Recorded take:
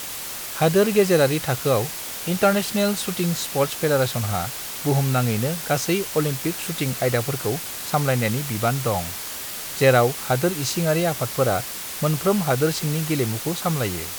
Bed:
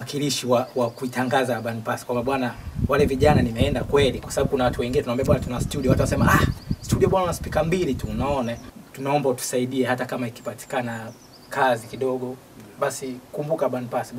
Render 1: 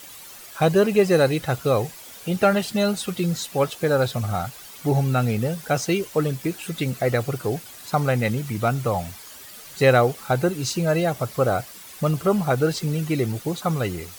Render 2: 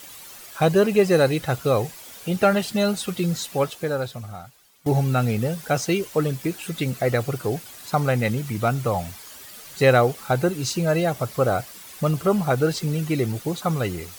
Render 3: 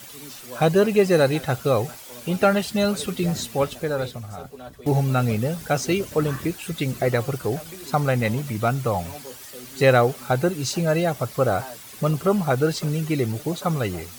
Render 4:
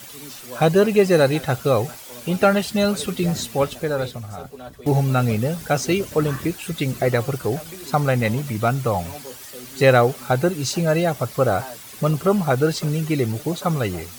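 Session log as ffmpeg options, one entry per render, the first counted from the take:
ffmpeg -i in.wav -af "afftdn=noise_reduction=12:noise_floor=-32" out.wav
ffmpeg -i in.wav -filter_complex "[0:a]asplit=2[link_01][link_02];[link_01]atrim=end=4.86,asetpts=PTS-STARTPTS,afade=type=out:start_time=3.52:duration=1.34:curve=qua:silence=0.141254[link_03];[link_02]atrim=start=4.86,asetpts=PTS-STARTPTS,afade=type=in:duration=0.004:curve=hsin:silence=0.141254[link_04];[link_03][link_04]concat=n=2:v=0:a=1" out.wav
ffmpeg -i in.wav -i bed.wav -filter_complex "[1:a]volume=-19dB[link_01];[0:a][link_01]amix=inputs=2:normalize=0" out.wav
ffmpeg -i in.wav -af "volume=2dB" out.wav

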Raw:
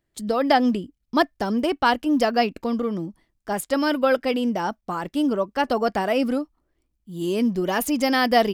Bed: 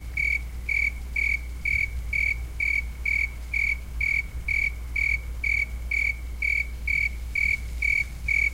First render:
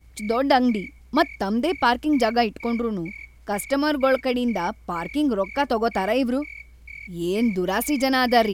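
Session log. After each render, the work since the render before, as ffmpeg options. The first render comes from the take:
ffmpeg -i in.wav -i bed.wav -filter_complex "[1:a]volume=-15dB[link_01];[0:a][link_01]amix=inputs=2:normalize=0" out.wav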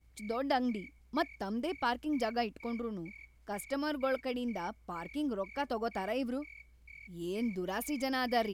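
ffmpeg -i in.wav -af "volume=-13dB" out.wav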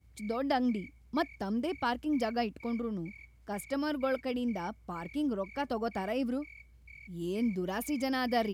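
ffmpeg -i in.wav -af "highpass=frequency=68:width=0.5412,highpass=frequency=68:width=1.3066,lowshelf=frequency=180:gain=10.5" out.wav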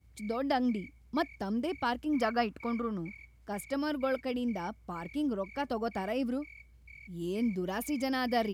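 ffmpeg -i in.wav -filter_complex "[0:a]asettb=1/sr,asplit=3[link_01][link_02][link_03];[link_01]atrim=end=2.144[link_04];[link_02]atrim=start=2.14:end=3.15,asetpts=PTS-STARTPTS,afade=type=in:duration=0.004:curve=qsin,afade=type=out:start_time=1.006:duration=0.004:curve=qsin,equalizer=frequency=1300:width=1.4:gain=10.5[link_05];[link_03]atrim=start=3.146[link_06];[link_04][link_05]acrossfade=duration=0.004:curve1=hsin:curve2=qsin[link_07];[link_07][link_06]acrossfade=duration=0.004:curve1=qsin:curve2=hsin" out.wav

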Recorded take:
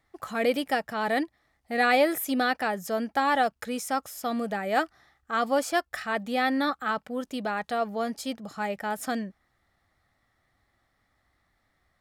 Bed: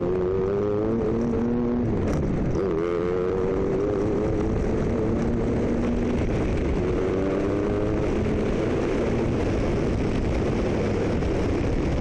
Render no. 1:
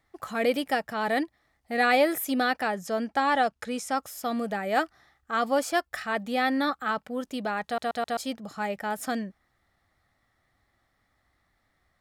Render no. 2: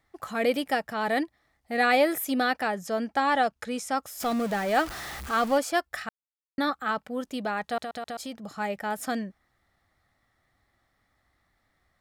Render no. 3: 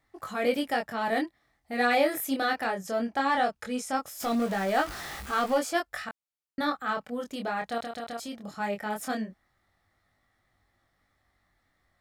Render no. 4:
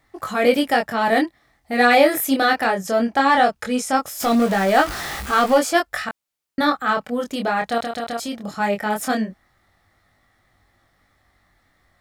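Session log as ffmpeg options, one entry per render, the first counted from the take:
ffmpeg -i in.wav -filter_complex "[0:a]asettb=1/sr,asplit=3[link_01][link_02][link_03];[link_01]atrim=end=2.704[link_04];[link_02]atrim=start=2.7:end=3.97,asetpts=PTS-STARTPTS,afade=type=in:duration=0.004:curve=qsin,afade=type=out:start_time=1.266:duration=0.004:curve=qsin,lowpass=9600[link_05];[link_03]atrim=start=3.966[link_06];[link_04][link_05]acrossfade=duration=0.004:curve1=hsin:curve2=qsin[link_07];[link_07][link_06]acrossfade=duration=0.004:curve1=qsin:curve2=hsin,asplit=5[link_08][link_09][link_10][link_11][link_12];[link_08]atrim=end=7.782[link_13];[link_09]atrim=start=7.648:end=7.782[link_14];[link_10]atrim=start=7.648:end=7.782[link_15];[link_11]atrim=start=7.648:end=7.782[link_16];[link_12]atrim=start=8.168[link_17];[link_13][link_14]acrossfade=duration=0.004:curve1=hsin:curve2=hsin[link_18];[link_18][link_15]acrossfade=duration=0.004:curve1=hsin:curve2=hsin[link_19];[link_19][link_16]acrossfade=duration=0.004:curve1=hsin:curve2=hsin[link_20];[link_20][link_17]acrossfade=duration=0.004:curve1=hsin:curve2=hsin" out.wav
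ffmpeg -i in.wav -filter_complex "[0:a]asettb=1/sr,asplit=3[link_01][link_02][link_03];[link_01]atrim=end=4.204[link_04];[link_02]atrim=start=4.2:end=5.58,asetpts=PTS-STARTPTS,afade=type=in:duration=0.004:curve=qsin,afade=type=out:start_time=1.376:duration=0.004:curve=qsin,aeval=exprs='val(0)+0.5*0.0251*sgn(val(0))':channel_layout=same[link_05];[link_03]atrim=start=5.576[link_06];[link_04][link_05]acrossfade=duration=0.004:curve1=hsin:curve2=qsin[link_07];[link_07][link_06]acrossfade=duration=0.004:curve1=qsin:curve2=hsin,asettb=1/sr,asplit=3[link_08][link_09][link_10];[link_08]atrim=end=7.844[link_11];[link_09]atrim=start=7.84:end=8.43,asetpts=PTS-STARTPTS,afade=type=in:duration=0.004:curve=qsin,afade=type=out:start_time=0.586:duration=0.004:curve=qsin,acompressor=threshold=-33dB:ratio=3:attack=3.2:release=140:knee=1:detection=peak[link_12];[link_10]atrim=start=8.426[link_13];[link_11][link_12]acrossfade=duration=0.004:curve1=hsin:curve2=qsin[link_14];[link_14][link_13]acrossfade=duration=0.004:curve1=qsin:curve2=hsin,asplit=3[link_15][link_16][link_17];[link_15]atrim=end=6.09,asetpts=PTS-STARTPTS,afade=type=out:start_time=6.086:duration=0.004:curve=hsin[link_18];[link_16]atrim=start=6.09:end=6.58,asetpts=PTS-STARTPTS,volume=0[link_19];[link_17]atrim=start=6.58,asetpts=PTS-STARTPTS,afade=type=in:duration=0.004:curve=hsin[link_20];[link_18][link_19][link_20]concat=n=3:v=0:a=1" out.wav
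ffmpeg -i in.wav -filter_complex "[0:a]flanger=delay=20:depth=6.1:speed=0.19,asplit=2[link_01][link_02];[link_02]asoftclip=type=tanh:threshold=-29dB,volume=-11.5dB[link_03];[link_01][link_03]amix=inputs=2:normalize=0" out.wav
ffmpeg -i in.wav -af "volume=10dB" out.wav

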